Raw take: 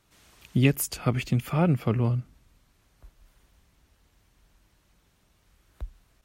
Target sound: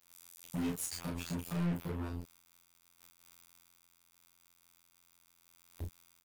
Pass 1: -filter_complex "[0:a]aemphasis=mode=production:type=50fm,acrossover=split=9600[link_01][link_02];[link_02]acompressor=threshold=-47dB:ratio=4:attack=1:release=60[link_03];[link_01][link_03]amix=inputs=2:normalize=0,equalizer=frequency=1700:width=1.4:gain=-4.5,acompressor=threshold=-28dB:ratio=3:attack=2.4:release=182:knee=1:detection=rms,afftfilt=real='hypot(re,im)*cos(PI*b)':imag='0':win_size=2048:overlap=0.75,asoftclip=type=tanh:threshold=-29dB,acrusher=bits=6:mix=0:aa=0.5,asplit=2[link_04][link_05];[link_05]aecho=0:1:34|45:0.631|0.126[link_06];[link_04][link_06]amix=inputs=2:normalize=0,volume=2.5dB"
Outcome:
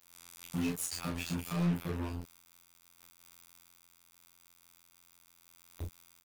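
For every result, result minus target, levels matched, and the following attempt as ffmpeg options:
soft clipping: distortion −5 dB; 2,000 Hz band +2.0 dB
-filter_complex "[0:a]aemphasis=mode=production:type=50fm,acrossover=split=9600[link_01][link_02];[link_02]acompressor=threshold=-47dB:ratio=4:attack=1:release=60[link_03];[link_01][link_03]amix=inputs=2:normalize=0,equalizer=frequency=1700:width=1.4:gain=-4.5,acompressor=threshold=-28dB:ratio=3:attack=2.4:release=182:knee=1:detection=rms,afftfilt=real='hypot(re,im)*cos(PI*b)':imag='0':win_size=2048:overlap=0.75,asoftclip=type=tanh:threshold=-37dB,acrusher=bits=6:mix=0:aa=0.5,asplit=2[link_04][link_05];[link_05]aecho=0:1:34|45:0.631|0.126[link_06];[link_04][link_06]amix=inputs=2:normalize=0,volume=2.5dB"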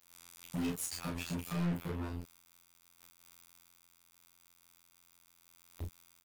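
2,000 Hz band +2.0 dB
-filter_complex "[0:a]aemphasis=mode=production:type=50fm,acrossover=split=9600[link_01][link_02];[link_02]acompressor=threshold=-47dB:ratio=4:attack=1:release=60[link_03];[link_01][link_03]amix=inputs=2:normalize=0,equalizer=frequency=1700:width=1.4:gain=-14.5,acompressor=threshold=-28dB:ratio=3:attack=2.4:release=182:knee=1:detection=rms,afftfilt=real='hypot(re,im)*cos(PI*b)':imag='0':win_size=2048:overlap=0.75,asoftclip=type=tanh:threshold=-37dB,acrusher=bits=6:mix=0:aa=0.5,asplit=2[link_04][link_05];[link_05]aecho=0:1:34|45:0.631|0.126[link_06];[link_04][link_06]amix=inputs=2:normalize=0,volume=2.5dB"

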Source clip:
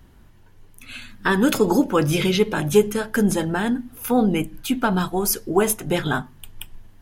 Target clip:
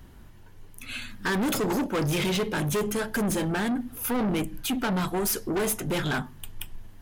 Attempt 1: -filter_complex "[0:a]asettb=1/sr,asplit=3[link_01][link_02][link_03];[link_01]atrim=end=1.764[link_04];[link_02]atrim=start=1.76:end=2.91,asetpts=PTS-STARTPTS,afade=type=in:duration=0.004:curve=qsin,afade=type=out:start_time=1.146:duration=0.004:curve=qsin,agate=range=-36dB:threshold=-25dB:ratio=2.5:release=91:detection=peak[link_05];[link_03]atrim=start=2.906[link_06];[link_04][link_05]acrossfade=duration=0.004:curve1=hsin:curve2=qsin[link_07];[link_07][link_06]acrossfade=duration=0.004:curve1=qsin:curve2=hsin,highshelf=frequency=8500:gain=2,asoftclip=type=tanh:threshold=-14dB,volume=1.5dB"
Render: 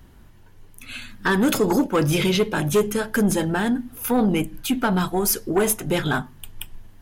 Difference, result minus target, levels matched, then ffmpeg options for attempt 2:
soft clipping: distortion −8 dB
-filter_complex "[0:a]asettb=1/sr,asplit=3[link_01][link_02][link_03];[link_01]atrim=end=1.764[link_04];[link_02]atrim=start=1.76:end=2.91,asetpts=PTS-STARTPTS,afade=type=in:duration=0.004:curve=qsin,afade=type=out:start_time=1.146:duration=0.004:curve=qsin,agate=range=-36dB:threshold=-25dB:ratio=2.5:release=91:detection=peak[link_05];[link_03]atrim=start=2.906[link_06];[link_04][link_05]acrossfade=duration=0.004:curve1=hsin:curve2=qsin[link_07];[link_07][link_06]acrossfade=duration=0.004:curve1=qsin:curve2=hsin,highshelf=frequency=8500:gain=2,asoftclip=type=tanh:threshold=-25dB,volume=1.5dB"

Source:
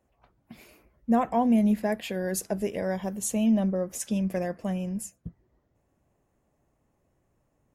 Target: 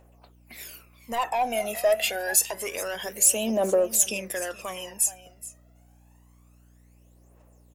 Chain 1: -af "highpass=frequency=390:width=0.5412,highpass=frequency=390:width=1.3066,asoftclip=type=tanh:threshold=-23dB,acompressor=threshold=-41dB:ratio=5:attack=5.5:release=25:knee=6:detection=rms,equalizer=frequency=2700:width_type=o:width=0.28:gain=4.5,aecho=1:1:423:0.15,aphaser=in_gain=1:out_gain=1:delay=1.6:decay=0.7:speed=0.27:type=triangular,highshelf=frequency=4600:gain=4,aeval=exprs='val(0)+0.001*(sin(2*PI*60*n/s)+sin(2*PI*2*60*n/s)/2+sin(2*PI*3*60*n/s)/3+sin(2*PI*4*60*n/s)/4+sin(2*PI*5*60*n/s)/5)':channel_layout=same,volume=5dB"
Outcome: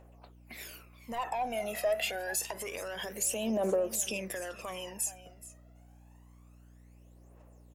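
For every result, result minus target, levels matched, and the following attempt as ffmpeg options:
downward compressor: peak gain reduction +8.5 dB; 8,000 Hz band −2.5 dB
-af "highpass=frequency=390:width=0.5412,highpass=frequency=390:width=1.3066,asoftclip=type=tanh:threshold=-23dB,acompressor=threshold=-30.5dB:ratio=5:attack=5.5:release=25:knee=6:detection=rms,equalizer=frequency=2700:width_type=o:width=0.28:gain=4.5,aecho=1:1:423:0.15,aphaser=in_gain=1:out_gain=1:delay=1.6:decay=0.7:speed=0.27:type=triangular,highshelf=frequency=4600:gain=4,aeval=exprs='val(0)+0.001*(sin(2*PI*60*n/s)+sin(2*PI*2*60*n/s)/2+sin(2*PI*3*60*n/s)/3+sin(2*PI*4*60*n/s)/4+sin(2*PI*5*60*n/s)/5)':channel_layout=same,volume=5dB"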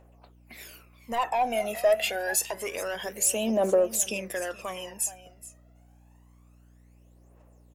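8,000 Hz band −2.5 dB
-af "highpass=frequency=390:width=0.5412,highpass=frequency=390:width=1.3066,asoftclip=type=tanh:threshold=-23dB,acompressor=threshold=-30.5dB:ratio=5:attack=5.5:release=25:knee=6:detection=rms,equalizer=frequency=2700:width_type=o:width=0.28:gain=4.5,aecho=1:1:423:0.15,aphaser=in_gain=1:out_gain=1:delay=1.6:decay=0.7:speed=0.27:type=triangular,highshelf=frequency=4600:gain=11,aeval=exprs='val(0)+0.001*(sin(2*PI*60*n/s)+sin(2*PI*2*60*n/s)/2+sin(2*PI*3*60*n/s)/3+sin(2*PI*4*60*n/s)/4+sin(2*PI*5*60*n/s)/5)':channel_layout=same,volume=5dB"

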